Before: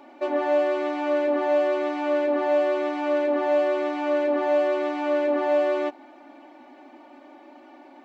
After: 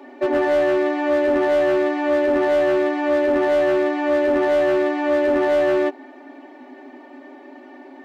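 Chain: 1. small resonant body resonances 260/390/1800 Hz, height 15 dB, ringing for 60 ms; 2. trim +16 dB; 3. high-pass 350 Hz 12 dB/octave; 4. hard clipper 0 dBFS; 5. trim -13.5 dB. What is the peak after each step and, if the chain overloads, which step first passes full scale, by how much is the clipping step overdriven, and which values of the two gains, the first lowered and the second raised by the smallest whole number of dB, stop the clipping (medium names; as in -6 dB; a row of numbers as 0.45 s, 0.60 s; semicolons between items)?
-8.0 dBFS, +8.0 dBFS, +6.5 dBFS, 0.0 dBFS, -13.5 dBFS; step 2, 6.5 dB; step 2 +9 dB, step 5 -6.5 dB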